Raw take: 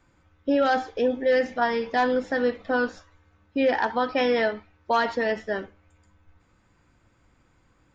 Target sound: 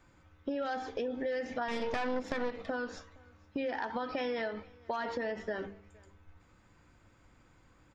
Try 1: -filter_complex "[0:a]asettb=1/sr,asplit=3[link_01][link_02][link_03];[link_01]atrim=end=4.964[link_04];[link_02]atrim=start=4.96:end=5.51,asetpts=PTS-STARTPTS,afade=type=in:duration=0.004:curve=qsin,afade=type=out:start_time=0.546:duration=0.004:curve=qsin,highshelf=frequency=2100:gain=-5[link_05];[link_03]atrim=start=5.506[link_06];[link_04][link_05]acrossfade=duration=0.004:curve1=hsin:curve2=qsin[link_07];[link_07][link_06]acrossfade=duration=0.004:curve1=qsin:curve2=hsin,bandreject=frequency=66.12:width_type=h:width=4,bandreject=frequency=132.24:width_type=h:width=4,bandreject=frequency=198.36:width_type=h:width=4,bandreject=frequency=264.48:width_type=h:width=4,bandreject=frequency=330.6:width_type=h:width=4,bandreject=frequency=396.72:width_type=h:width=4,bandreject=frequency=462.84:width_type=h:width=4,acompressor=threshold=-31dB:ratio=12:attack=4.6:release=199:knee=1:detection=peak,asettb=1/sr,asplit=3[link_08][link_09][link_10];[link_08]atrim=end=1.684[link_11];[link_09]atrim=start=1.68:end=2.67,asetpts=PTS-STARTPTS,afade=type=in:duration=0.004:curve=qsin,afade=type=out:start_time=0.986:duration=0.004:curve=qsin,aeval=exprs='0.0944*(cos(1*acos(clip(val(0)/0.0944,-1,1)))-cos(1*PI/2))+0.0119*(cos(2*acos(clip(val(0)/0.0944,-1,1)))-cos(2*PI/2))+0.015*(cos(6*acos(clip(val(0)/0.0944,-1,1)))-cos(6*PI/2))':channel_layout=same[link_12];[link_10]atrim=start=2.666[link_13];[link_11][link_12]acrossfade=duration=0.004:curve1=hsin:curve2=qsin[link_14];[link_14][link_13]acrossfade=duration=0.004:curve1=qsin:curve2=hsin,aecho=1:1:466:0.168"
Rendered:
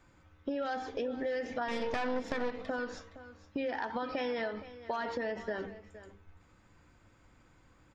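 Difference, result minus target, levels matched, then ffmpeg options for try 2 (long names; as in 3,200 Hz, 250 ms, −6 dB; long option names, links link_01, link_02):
echo-to-direct +10.5 dB
-filter_complex "[0:a]asettb=1/sr,asplit=3[link_01][link_02][link_03];[link_01]atrim=end=4.964[link_04];[link_02]atrim=start=4.96:end=5.51,asetpts=PTS-STARTPTS,afade=type=in:duration=0.004:curve=qsin,afade=type=out:start_time=0.546:duration=0.004:curve=qsin,highshelf=frequency=2100:gain=-5[link_05];[link_03]atrim=start=5.506[link_06];[link_04][link_05]acrossfade=duration=0.004:curve1=hsin:curve2=qsin[link_07];[link_07][link_06]acrossfade=duration=0.004:curve1=qsin:curve2=hsin,bandreject=frequency=66.12:width_type=h:width=4,bandreject=frequency=132.24:width_type=h:width=4,bandreject=frequency=198.36:width_type=h:width=4,bandreject=frequency=264.48:width_type=h:width=4,bandreject=frequency=330.6:width_type=h:width=4,bandreject=frequency=396.72:width_type=h:width=4,bandreject=frequency=462.84:width_type=h:width=4,acompressor=threshold=-31dB:ratio=12:attack=4.6:release=199:knee=1:detection=peak,asettb=1/sr,asplit=3[link_08][link_09][link_10];[link_08]atrim=end=1.684[link_11];[link_09]atrim=start=1.68:end=2.67,asetpts=PTS-STARTPTS,afade=type=in:duration=0.004:curve=qsin,afade=type=out:start_time=0.986:duration=0.004:curve=qsin,aeval=exprs='0.0944*(cos(1*acos(clip(val(0)/0.0944,-1,1)))-cos(1*PI/2))+0.0119*(cos(2*acos(clip(val(0)/0.0944,-1,1)))-cos(2*PI/2))+0.015*(cos(6*acos(clip(val(0)/0.0944,-1,1)))-cos(6*PI/2))':channel_layout=same[link_12];[link_10]atrim=start=2.666[link_13];[link_11][link_12]acrossfade=duration=0.004:curve1=hsin:curve2=qsin[link_14];[link_14][link_13]acrossfade=duration=0.004:curve1=qsin:curve2=hsin,aecho=1:1:466:0.0501"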